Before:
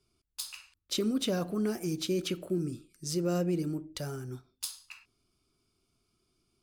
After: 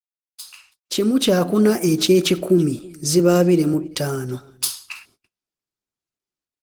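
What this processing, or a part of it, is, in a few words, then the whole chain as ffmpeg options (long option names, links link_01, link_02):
video call: -filter_complex "[0:a]asettb=1/sr,asplit=3[link_01][link_02][link_03];[link_01]atrim=end=3.194[link_04];[link_02]atrim=start=3.19:end=3.74,asetpts=PTS-STARTPTS,afade=type=in:duration=0.004:curve=qsin,afade=type=out:start_time=0.546:duration=0.004:curve=qsin,highpass=130[link_05];[link_03]atrim=start=3.736[link_06];[link_04][link_05]acrossfade=duration=0.004:curve1=hsin:curve2=qsin[link_07];[link_07][link_06]acrossfade=duration=0.004:curve1=qsin:curve2=hsin,highpass=frequency=170:poles=1,asplit=2[link_08][link_09];[link_09]adelay=326.5,volume=-23dB,highshelf=frequency=4000:gain=-7.35[link_10];[link_08][link_10]amix=inputs=2:normalize=0,dynaudnorm=framelen=400:gausssize=5:maxgain=16dB,agate=range=-37dB:threshold=-53dB:ratio=16:detection=peak,volume=1.5dB" -ar 48000 -c:a libopus -b:a 20k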